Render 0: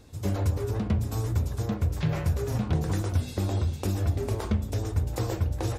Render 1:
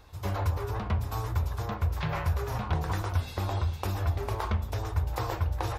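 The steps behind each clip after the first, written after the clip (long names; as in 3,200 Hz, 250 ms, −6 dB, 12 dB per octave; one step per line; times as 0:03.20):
octave-band graphic EQ 125/250/500/1,000/8,000 Hz −6/−12/−4/+7/−10 dB
level +2 dB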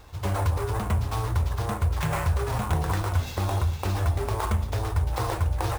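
in parallel at −1.5 dB: brickwall limiter −24 dBFS, peak gain reduction 9 dB
on the sum: sample-rate reduction 10,000 Hz, jitter 20%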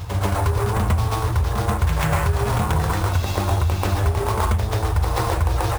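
downward compressor, threshold −24 dBFS, peak gain reduction 6 dB
backwards echo 136 ms −5 dB
level +7.5 dB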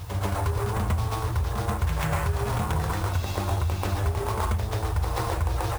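bit-depth reduction 8 bits, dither triangular
level −6 dB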